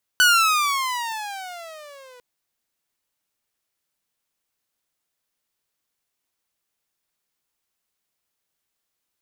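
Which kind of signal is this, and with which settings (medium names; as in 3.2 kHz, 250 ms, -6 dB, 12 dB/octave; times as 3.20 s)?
gliding synth tone saw, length 2.00 s, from 1.5 kHz, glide -19.5 st, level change -33 dB, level -9 dB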